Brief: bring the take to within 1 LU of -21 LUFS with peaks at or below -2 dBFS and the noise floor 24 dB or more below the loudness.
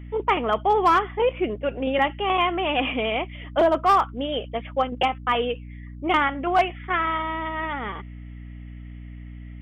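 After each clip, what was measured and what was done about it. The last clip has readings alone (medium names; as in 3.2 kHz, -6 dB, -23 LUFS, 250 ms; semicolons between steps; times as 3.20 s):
clipped samples 0.2%; clipping level -11.5 dBFS; hum 60 Hz; highest harmonic 300 Hz; hum level -36 dBFS; loudness -23.5 LUFS; peak level -11.5 dBFS; loudness target -21.0 LUFS
-> clip repair -11.5 dBFS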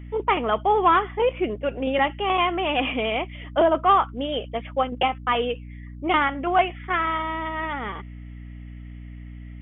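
clipped samples 0.0%; hum 60 Hz; highest harmonic 300 Hz; hum level -36 dBFS
-> de-hum 60 Hz, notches 5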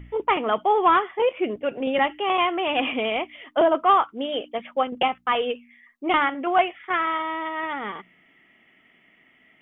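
hum not found; loudness -23.5 LUFS; peak level -7.5 dBFS; loudness target -21.0 LUFS
-> trim +2.5 dB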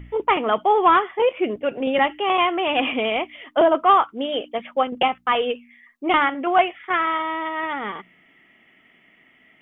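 loudness -21.0 LUFS; peak level -5.0 dBFS; noise floor -57 dBFS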